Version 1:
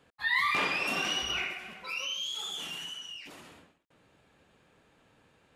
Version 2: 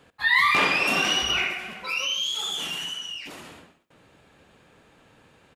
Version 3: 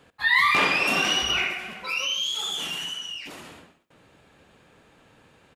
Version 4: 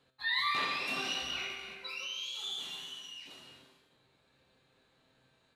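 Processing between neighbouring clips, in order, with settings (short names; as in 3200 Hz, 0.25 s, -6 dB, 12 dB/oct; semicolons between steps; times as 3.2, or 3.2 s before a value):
feedback echo 76 ms, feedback 33%, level -17 dB; gain +8 dB
nothing audible
bell 4000 Hz +14.5 dB 0.26 oct; resonator 130 Hz, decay 0.82 s, harmonics all, mix 80%; non-linear reverb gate 0.37 s rising, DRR 9 dB; gain -4 dB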